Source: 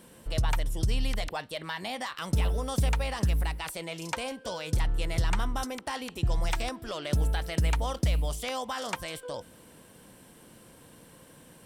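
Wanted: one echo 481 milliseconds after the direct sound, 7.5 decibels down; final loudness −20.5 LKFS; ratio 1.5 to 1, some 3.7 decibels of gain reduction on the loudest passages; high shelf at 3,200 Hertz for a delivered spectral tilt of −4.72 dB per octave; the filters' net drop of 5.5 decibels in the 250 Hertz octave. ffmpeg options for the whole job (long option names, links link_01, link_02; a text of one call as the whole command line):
ffmpeg -i in.wav -af "equalizer=frequency=250:width_type=o:gain=-8.5,highshelf=frequency=3200:gain=-4,acompressor=threshold=-33dB:ratio=1.5,aecho=1:1:481:0.422,volume=14dB" out.wav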